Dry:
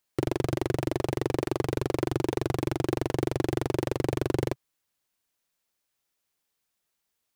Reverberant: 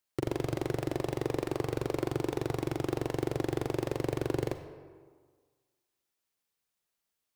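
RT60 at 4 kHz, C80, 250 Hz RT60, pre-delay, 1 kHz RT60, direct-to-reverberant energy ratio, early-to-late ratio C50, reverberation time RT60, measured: 0.95 s, 10.0 dB, 1.5 s, 37 ms, 1.6 s, 8.0 dB, 8.5 dB, 1.6 s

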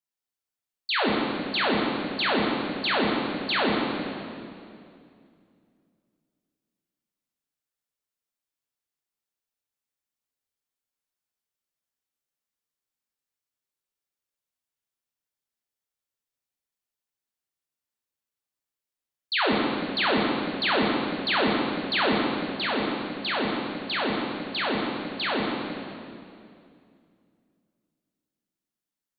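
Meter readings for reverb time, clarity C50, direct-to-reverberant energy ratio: 2.5 s, -0.5 dB, -4.0 dB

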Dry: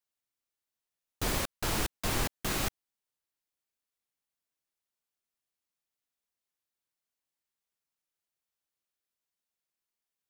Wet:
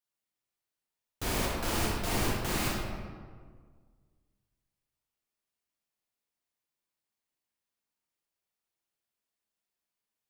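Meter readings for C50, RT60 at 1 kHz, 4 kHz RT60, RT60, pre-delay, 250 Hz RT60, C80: -0.5 dB, 1.6 s, 0.95 s, 1.7 s, 22 ms, 2.0 s, 2.0 dB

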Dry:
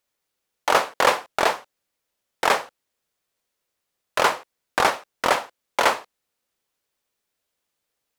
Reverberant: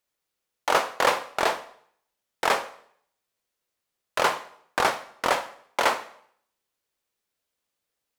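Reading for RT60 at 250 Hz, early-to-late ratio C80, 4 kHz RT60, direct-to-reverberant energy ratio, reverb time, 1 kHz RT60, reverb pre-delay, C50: 0.65 s, 17.5 dB, 0.60 s, 11.5 dB, 0.65 s, 0.65 s, 5 ms, 15.0 dB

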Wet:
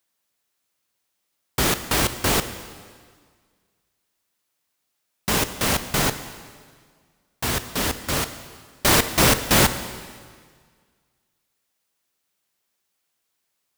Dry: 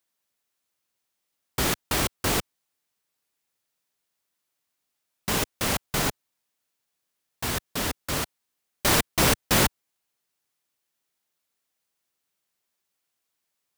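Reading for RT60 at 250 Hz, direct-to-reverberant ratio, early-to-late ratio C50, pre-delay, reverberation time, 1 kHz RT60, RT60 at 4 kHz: 1.8 s, 10.5 dB, 11.5 dB, 7 ms, 1.8 s, 1.8 s, 1.6 s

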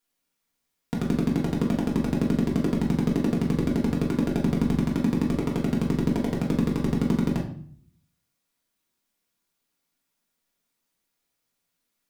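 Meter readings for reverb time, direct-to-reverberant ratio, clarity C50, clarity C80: 0.55 s, -3.5 dB, 7.5 dB, 11.0 dB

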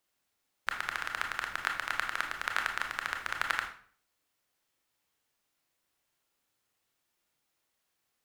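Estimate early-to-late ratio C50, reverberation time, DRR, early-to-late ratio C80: 7.0 dB, 0.50 s, 3.0 dB, 11.5 dB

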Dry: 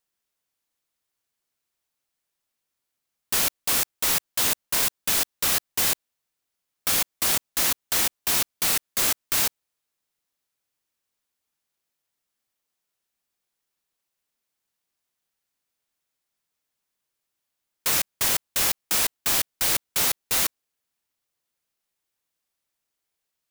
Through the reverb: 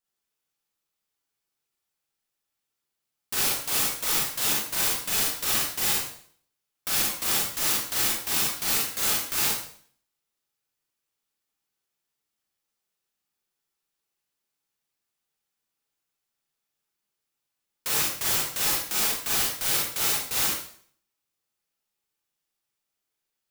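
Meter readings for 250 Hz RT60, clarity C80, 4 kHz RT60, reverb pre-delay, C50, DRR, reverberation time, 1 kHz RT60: 0.60 s, 5.5 dB, 0.50 s, 33 ms, 0.5 dB, -4.5 dB, 0.55 s, 0.55 s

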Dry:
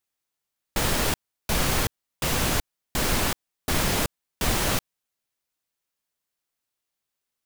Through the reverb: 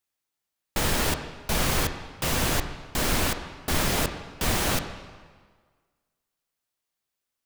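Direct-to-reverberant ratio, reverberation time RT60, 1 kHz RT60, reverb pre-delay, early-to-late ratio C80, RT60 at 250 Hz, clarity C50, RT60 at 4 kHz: 7.0 dB, 1.6 s, 1.6 s, 11 ms, 10.0 dB, 1.5 s, 8.5 dB, 1.3 s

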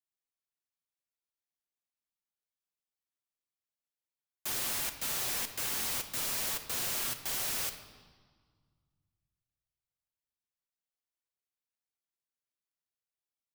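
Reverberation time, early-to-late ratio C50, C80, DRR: 1.7 s, 9.5 dB, 11.5 dB, 6.0 dB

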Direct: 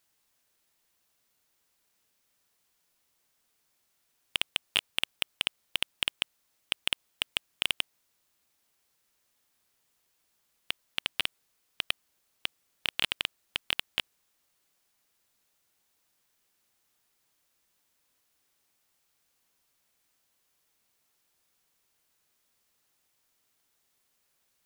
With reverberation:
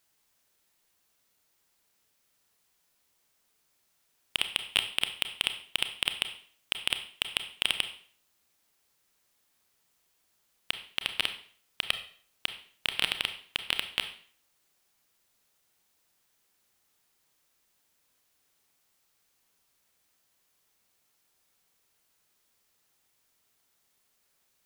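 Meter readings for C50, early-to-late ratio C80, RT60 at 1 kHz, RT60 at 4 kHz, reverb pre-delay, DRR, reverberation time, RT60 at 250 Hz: 11.0 dB, 14.0 dB, 0.50 s, 0.45 s, 27 ms, 8.0 dB, 0.50 s, 0.50 s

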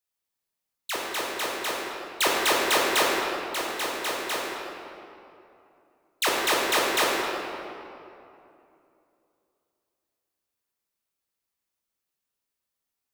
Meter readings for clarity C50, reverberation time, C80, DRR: -1.0 dB, 2.7 s, 0.0 dB, -3.5 dB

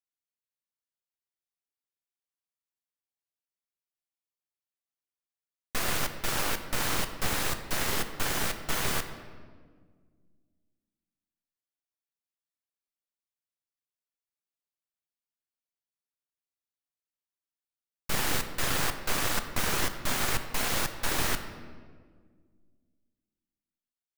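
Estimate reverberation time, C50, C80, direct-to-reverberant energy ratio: 1.7 s, 9.5 dB, 10.5 dB, 7.5 dB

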